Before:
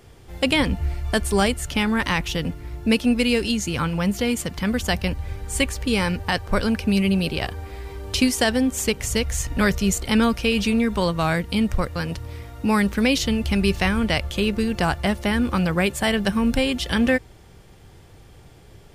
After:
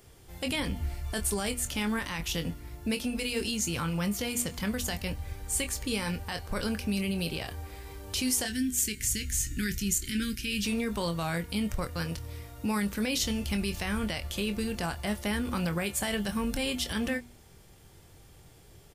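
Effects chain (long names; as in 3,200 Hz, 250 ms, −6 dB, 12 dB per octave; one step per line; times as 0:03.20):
0:08.45–0:10.65: elliptic band-stop filter 360–1,600 Hz, stop band 60 dB
double-tracking delay 24 ms −10 dB
brickwall limiter −14.5 dBFS, peak gain reduction 8.5 dB
high-shelf EQ 5,900 Hz +11.5 dB
hum removal 241.1 Hz, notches 40
level −8 dB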